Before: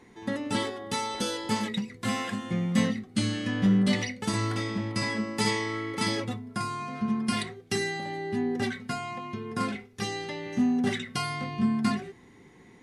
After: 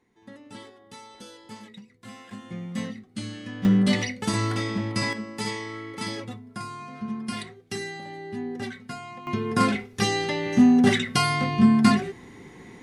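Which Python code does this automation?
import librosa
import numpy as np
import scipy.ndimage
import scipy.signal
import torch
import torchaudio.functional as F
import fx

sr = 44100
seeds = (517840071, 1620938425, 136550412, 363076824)

y = fx.gain(x, sr, db=fx.steps((0.0, -14.5), (2.31, -7.0), (3.65, 3.0), (5.13, -4.0), (9.27, 8.5)))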